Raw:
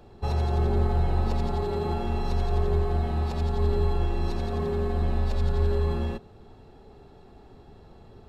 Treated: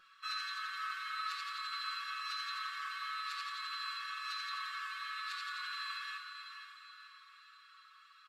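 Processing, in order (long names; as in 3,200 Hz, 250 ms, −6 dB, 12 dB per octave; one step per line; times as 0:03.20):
linear-phase brick-wall high-pass 1,100 Hz
high-shelf EQ 3,500 Hz −10 dB
comb filter 5.4 ms, depth 93%
feedback delay with all-pass diffusion 521 ms, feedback 43%, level −8 dB
convolution reverb RT60 0.70 s, pre-delay 6 ms, DRR 3 dB
level +2 dB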